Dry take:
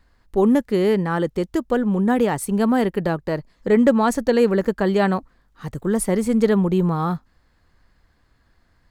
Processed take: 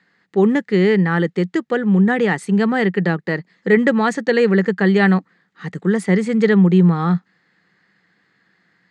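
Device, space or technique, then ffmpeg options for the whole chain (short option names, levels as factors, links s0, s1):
television speaker: -af "highpass=f=170:w=0.5412,highpass=f=170:w=1.3066,equalizer=f=180:t=q:w=4:g=8,equalizer=f=250:t=q:w=4:g=-8,equalizer=f=610:t=q:w=4:g=-9,equalizer=f=1000:t=q:w=4:g=-7,equalizer=f=1900:t=q:w=4:g=9,equalizer=f=5600:t=q:w=4:g=-6,lowpass=f=6700:w=0.5412,lowpass=f=6700:w=1.3066,volume=1.58"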